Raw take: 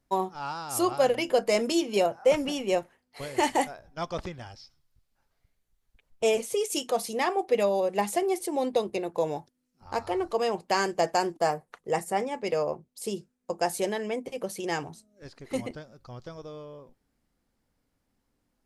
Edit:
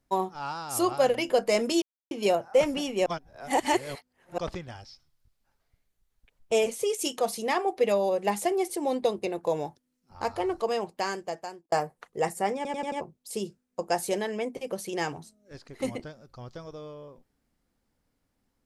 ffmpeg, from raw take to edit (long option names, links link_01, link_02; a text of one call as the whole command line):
ffmpeg -i in.wav -filter_complex "[0:a]asplit=10[link_01][link_02][link_03][link_04][link_05][link_06][link_07][link_08][link_09][link_10];[link_01]atrim=end=1.82,asetpts=PTS-STARTPTS,afade=type=out:start_time=1.816:duration=0.004:curve=hsin,apad=pad_dur=0.29[link_11];[link_02]atrim=start=1.82:end=2.772,asetpts=PTS-STARTPTS,afade=type=in:duration=0.004:curve=hsin[link_12];[link_03]atrim=start=2.768:end=4.092,asetpts=PTS-STARTPTS,areverse[link_13];[link_04]atrim=start=4.088:end=11.43,asetpts=PTS-STARTPTS,afade=type=out:start_time=6.172:duration=1.17[link_14];[link_05]atrim=start=11.43:end=12.362,asetpts=PTS-STARTPTS,afade=type=in:duration=0.004:curve=hsin[link_15];[link_06]atrim=start=12.268:end=12.362[link_16];[link_07]atrim=start=12.268:end=12.362[link_17];[link_08]atrim=start=12.268:end=12.362[link_18];[link_09]atrim=start=12.268:end=12.362[link_19];[link_10]atrim=start=12.718[link_20];[link_11][link_12]concat=n=2:v=0:a=1[link_21];[link_21][link_13]acrossfade=duration=0.004:curve1=hsin:curve2=hsin[link_22];[link_14][link_15]concat=n=2:v=0:a=1[link_23];[link_22][link_23]acrossfade=duration=0.004:curve1=hsin:curve2=hsin[link_24];[link_24][link_16]acrossfade=duration=0.004:curve1=hsin:curve2=hsin[link_25];[link_25][link_17]acrossfade=duration=0.004:curve1=hsin:curve2=hsin[link_26];[link_26][link_18]acrossfade=duration=0.004:curve1=hsin:curve2=hsin[link_27];[link_27][link_19]acrossfade=duration=0.004:curve1=hsin:curve2=hsin[link_28];[link_28][link_20]acrossfade=duration=0.004:curve1=hsin:curve2=hsin" out.wav